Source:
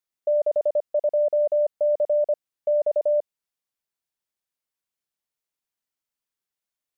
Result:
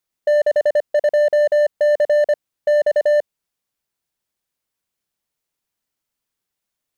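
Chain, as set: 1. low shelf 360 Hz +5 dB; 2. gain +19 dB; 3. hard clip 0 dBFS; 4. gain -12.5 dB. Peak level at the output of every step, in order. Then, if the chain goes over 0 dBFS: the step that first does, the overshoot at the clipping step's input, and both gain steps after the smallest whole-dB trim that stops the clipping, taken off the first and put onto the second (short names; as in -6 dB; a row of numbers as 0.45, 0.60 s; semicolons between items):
-15.5, +3.5, 0.0, -12.5 dBFS; step 2, 3.5 dB; step 2 +15 dB, step 4 -8.5 dB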